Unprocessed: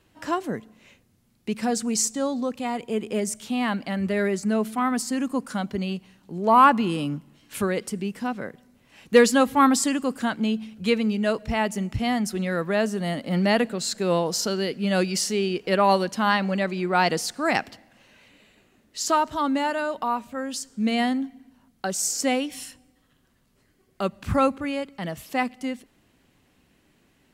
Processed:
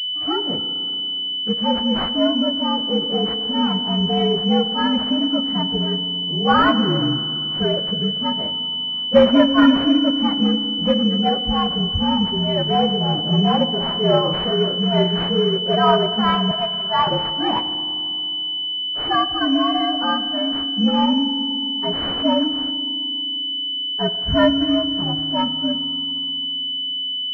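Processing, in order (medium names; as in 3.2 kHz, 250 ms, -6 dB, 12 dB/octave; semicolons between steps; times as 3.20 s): frequency axis rescaled in octaves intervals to 118%; 16.51–17.07 s: steep high-pass 600 Hz 36 dB/octave; in parallel at -11.5 dB: integer overflow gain 11 dB; 13.69–15.29 s: on the sum: flutter echo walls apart 5.8 m, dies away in 0.32 s; FDN reverb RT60 2.6 s, low-frequency decay 1.5×, high-frequency decay 0.45×, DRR 11 dB; class-D stage that switches slowly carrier 3 kHz; trim +4.5 dB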